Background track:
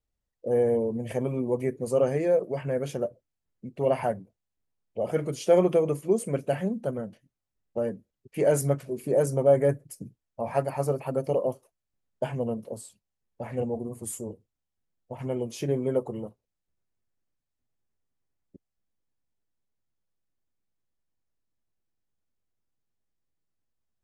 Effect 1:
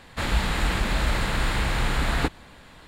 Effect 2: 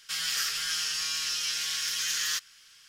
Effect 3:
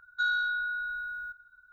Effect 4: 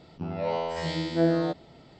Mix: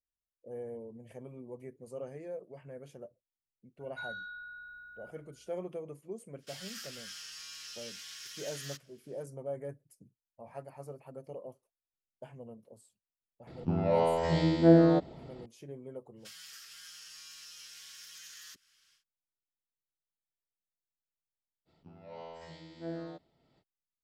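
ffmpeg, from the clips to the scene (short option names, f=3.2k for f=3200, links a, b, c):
-filter_complex "[2:a]asplit=2[a][b];[4:a]asplit=2[c][d];[0:a]volume=-18.5dB[e];[3:a]aeval=exprs='val(0)+0.000891*(sin(2*PI*60*n/s)+sin(2*PI*2*60*n/s)/2+sin(2*PI*3*60*n/s)/3+sin(2*PI*4*60*n/s)/4+sin(2*PI*5*60*n/s)/5)':c=same[f];[c]tiltshelf=f=1.2k:g=4.5[g];[b]acrossover=split=1100|7700[h][i][j];[h]acompressor=threshold=-59dB:ratio=4[k];[i]acompressor=threshold=-38dB:ratio=4[l];[j]acompressor=threshold=-43dB:ratio=4[m];[k][l][m]amix=inputs=3:normalize=0[n];[d]tremolo=f=1.5:d=0.47[o];[f]atrim=end=1.72,asetpts=PTS-STARTPTS,volume=-14dB,afade=t=in:d=0.004:c=hsin,afade=t=out:st=1.716:d=0.004:c=hsin,adelay=3780[p];[a]atrim=end=2.88,asetpts=PTS-STARTPTS,volume=-15.5dB,afade=t=in:d=0.05,afade=t=out:st=2.83:d=0.05,adelay=6380[q];[g]atrim=end=1.99,asetpts=PTS-STARTPTS,volume=-0.5dB,afade=t=in:d=0.004:c=hsin,afade=t=out:st=1.986:d=0.004:c=hsin,adelay=13470[r];[n]atrim=end=2.88,asetpts=PTS-STARTPTS,volume=-13dB,afade=t=in:d=0.1,afade=t=out:st=2.78:d=0.1,adelay=16160[s];[o]atrim=end=1.99,asetpts=PTS-STARTPTS,volume=-16dB,afade=t=in:d=0.05,afade=t=out:st=1.94:d=0.05,adelay=21650[t];[e][p][q][r][s][t]amix=inputs=6:normalize=0"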